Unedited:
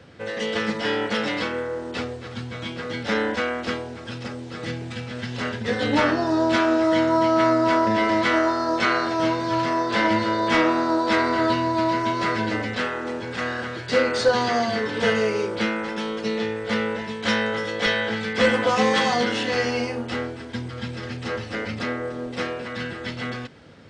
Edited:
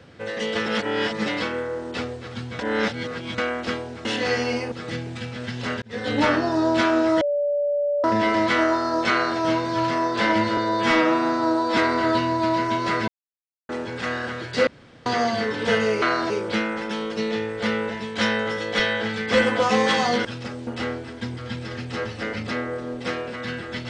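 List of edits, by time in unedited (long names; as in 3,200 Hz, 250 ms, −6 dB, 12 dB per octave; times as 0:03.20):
0:00.66–0:01.26: reverse
0:02.59–0:03.38: reverse
0:04.05–0:04.47: swap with 0:19.32–0:19.99
0:05.57–0:06.03: fade in equal-power
0:06.96–0:07.79: beep over 579 Hz −19.5 dBFS
0:08.86–0:09.14: duplicate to 0:15.37
0:10.32–0:11.12: time-stretch 1.5×
0:12.43–0:13.04: silence
0:14.02–0:14.41: fill with room tone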